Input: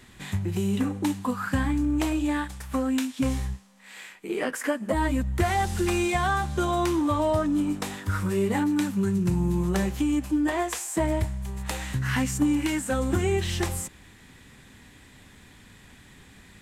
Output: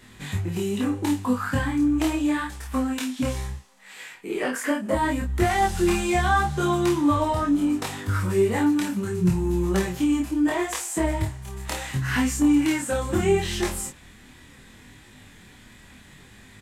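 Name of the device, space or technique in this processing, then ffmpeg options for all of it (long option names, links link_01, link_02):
double-tracked vocal: -filter_complex "[0:a]asplit=2[link_01][link_02];[link_02]adelay=28,volume=-4dB[link_03];[link_01][link_03]amix=inputs=2:normalize=0,flanger=delay=19.5:depth=5.5:speed=0.73,volume=4dB"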